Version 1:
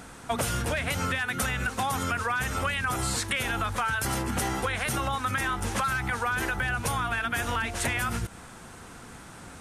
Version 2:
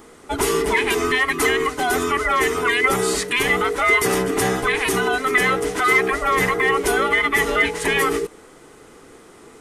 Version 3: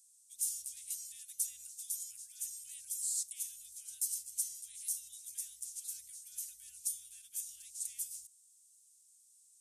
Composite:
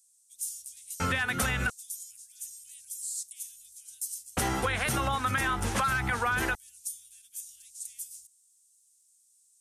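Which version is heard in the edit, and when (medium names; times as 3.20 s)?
3
1.00–1.70 s: from 1
4.37–6.55 s: from 1
not used: 2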